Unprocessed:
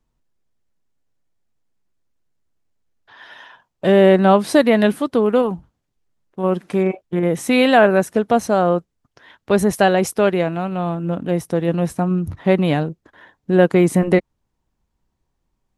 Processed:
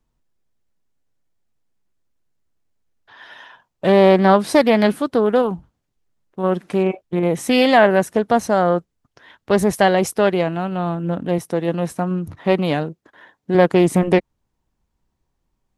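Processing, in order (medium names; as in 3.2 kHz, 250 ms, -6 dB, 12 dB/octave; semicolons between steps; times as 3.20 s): 11.38–13.55 s: high-pass 200 Hz 6 dB/octave; loudspeaker Doppler distortion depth 0.23 ms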